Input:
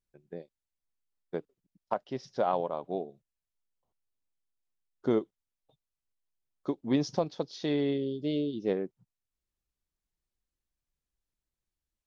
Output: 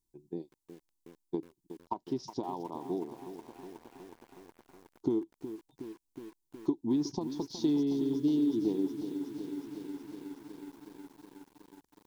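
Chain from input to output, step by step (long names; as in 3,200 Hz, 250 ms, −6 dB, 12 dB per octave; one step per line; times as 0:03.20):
downward compressor 6 to 1, threshold −33 dBFS, peak gain reduction 11 dB
drawn EQ curve 210 Hz 0 dB, 330 Hz +10 dB, 560 Hz −16 dB, 950 Hz +5 dB, 1,400 Hz −23 dB, 3,700 Hz −2 dB, 7,700 Hz +5 dB
feedback echo at a low word length 367 ms, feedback 80%, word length 9 bits, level −11 dB
level +2 dB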